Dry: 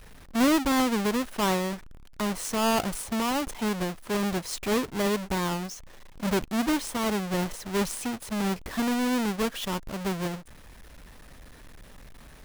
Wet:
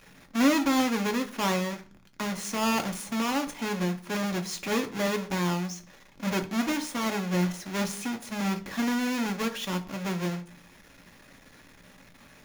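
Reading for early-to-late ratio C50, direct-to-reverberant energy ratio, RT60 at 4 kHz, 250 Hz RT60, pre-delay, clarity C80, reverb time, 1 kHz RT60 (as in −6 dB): 15.5 dB, 4.5 dB, 0.45 s, 0.60 s, 3 ms, 20.0 dB, 0.45 s, 0.40 s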